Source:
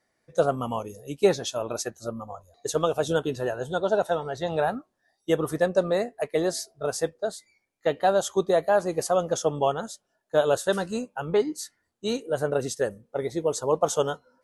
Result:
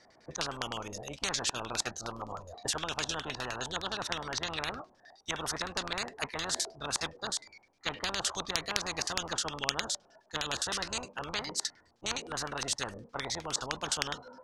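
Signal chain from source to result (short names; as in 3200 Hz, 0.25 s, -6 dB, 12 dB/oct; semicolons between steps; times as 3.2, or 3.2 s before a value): LFO low-pass square 9.7 Hz 900–5200 Hz; spectral compressor 10:1; gain +2 dB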